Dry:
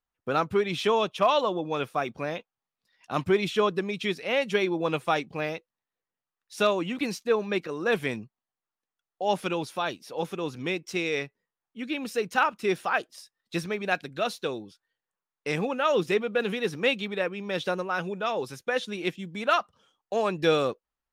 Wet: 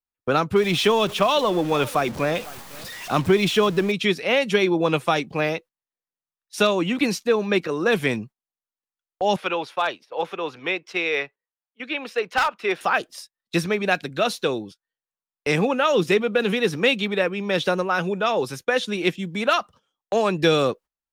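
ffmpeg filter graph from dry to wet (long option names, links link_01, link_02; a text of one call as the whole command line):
ffmpeg -i in.wav -filter_complex "[0:a]asettb=1/sr,asplit=3[link_01][link_02][link_03];[link_01]atrim=end=0.564[link_04];[link_02]atrim=start=0.56:end=3.92,asetpts=PTS-STARTPTS,afade=type=in:duration=0.004:curve=qsin,afade=type=out:start_time=3.356:duration=0.004:curve=qsin,aeval=exprs='val(0)+0.5*0.0119*sgn(val(0))':channel_layout=same,aecho=1:1:503:0.075,atrim=end_sample=148176[link_05];[link_03]atrim=start=3.916[link_06];[link_04][link_05]acrossfade=duration=0.004:curve1=hsin:curve2=qsin[link_07];[link_07][link_06]acrossfade=duration=0.004:curve1=qsin:curve2=hsin,asettb=1/sr,asplit=3[link_08][link_09][link_10];[link_08]atrim=end=9.364[link_11];[link_09]atrim=start=9.36:end=12.81,asetpts=PTS-STARTPTS,afade=type=in:duration=0.004:curve=qsin,afade=type=out:start_time=3.446:duration=0.004:curve=qsin,acrossover=split=440 4000:gain=0.158 1 0.141[link_12][link_13][link_14];[link_12][link_13][link_14]amix=inputs=3:normalize=0,volume=20.5dB,asoftclip=hard,volume=-20.5dB[link_15];[link_10]atrim=start=12.806[link_16];[link_11][link_15]acrossfade=duration=0.004:curve1=hsin:curve2=qsin[link_17];[link_17][link_16]acrossfade=duration=0.004:curve1=qsin:curve2=hsin,agate=range=-17dB:threshold=-47dB:ratio=16:detection=peak,acrossover=split=270|3000[link_18][link_19][link_20];[link_19]acompressor=threshold=-25dB:ratio=6[link_21];[link_18][link_21][link_20]amix=inputs=3:normalize=0,volume=8dB" out.wav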